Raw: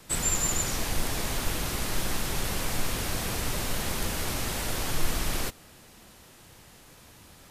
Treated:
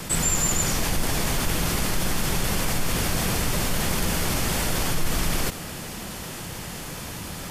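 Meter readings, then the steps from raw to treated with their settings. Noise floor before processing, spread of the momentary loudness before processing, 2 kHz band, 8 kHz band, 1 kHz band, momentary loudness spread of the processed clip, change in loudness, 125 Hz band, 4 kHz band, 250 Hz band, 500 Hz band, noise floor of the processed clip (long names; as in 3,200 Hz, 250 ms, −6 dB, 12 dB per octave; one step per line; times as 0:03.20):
−53 dBFS, 4 LU, +5.5 dB, +4.5 dB, +5.5 dB, 12 LU, +4.5 dB, +7.0 dB, +5.0 dB, +7.5 dB, +5.5 dB, −35 dBFS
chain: parametric band 170 Hz +5.5 dB 0.52 octaves
notch filter 3,900 Hz, Q 19
envelope flattener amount 50%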